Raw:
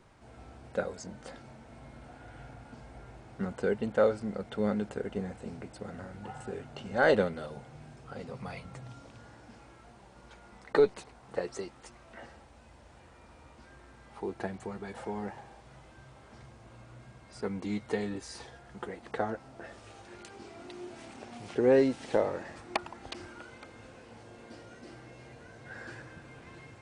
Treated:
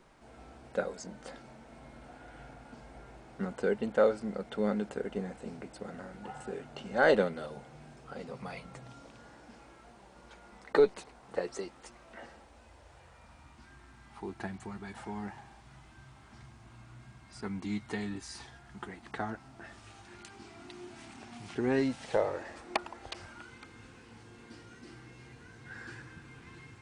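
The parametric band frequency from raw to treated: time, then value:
parametric band −15 dB 0.57 octaves
0:12.34 96 Hz
0:13.50 510 Hz
0:21.79 510 Hz
0:22.76 93 Hz
0:23.47 600 Hz

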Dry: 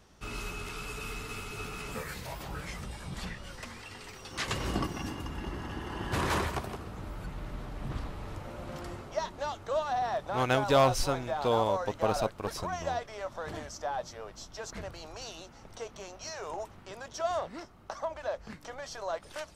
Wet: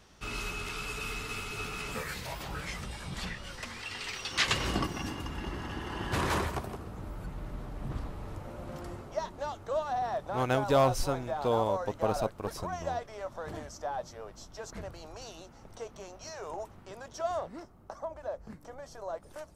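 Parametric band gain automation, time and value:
parametric band 3,200 Hz 2.6 octaves
0:03.67 +4 dB
0:04.14 +13.5 dB
0:04.88 +2.5 dB
0:06.03 +2.5 dB
0:06.72 −5.5 dB
0:17.23 −5.5 dB
0:17.98 −14 dB

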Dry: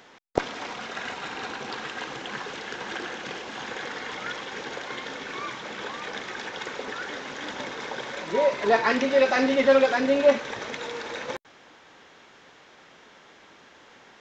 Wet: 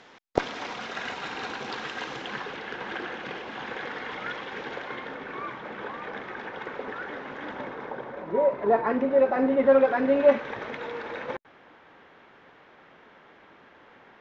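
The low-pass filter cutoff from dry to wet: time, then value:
0:02.13 6,000 Hz
0:02.58 2,900 Hz
0:04.75 2,900 Hz
0:05.18 1,800 Hz
0:07.50 1,800 Hz
0:08.15 1,000 Hz
0:09.41 1,000 Hz
0:10.40 2,200 Hz

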